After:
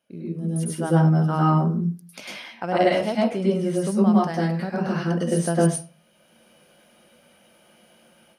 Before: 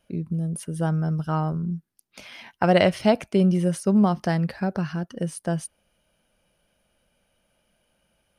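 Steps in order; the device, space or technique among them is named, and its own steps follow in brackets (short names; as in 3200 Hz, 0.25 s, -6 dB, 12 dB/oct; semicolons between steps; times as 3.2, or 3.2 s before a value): far laptop microphone (reverb RT60 0.35 s, pre-delay 97 ms, DRR -5 dB; HPF 170 Hz 12 dB/oct; AGC gain up to 14.5 dB); gain -6.5 dB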